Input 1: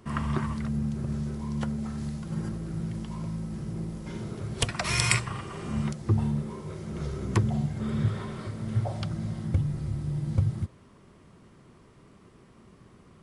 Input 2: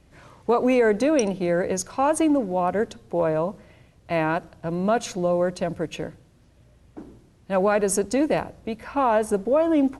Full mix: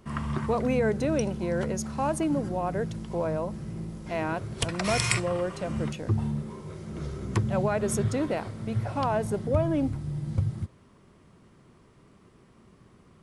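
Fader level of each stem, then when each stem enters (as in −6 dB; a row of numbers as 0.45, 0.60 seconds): −2.0, −7.0 decibels; 0.00, 0.00 seconds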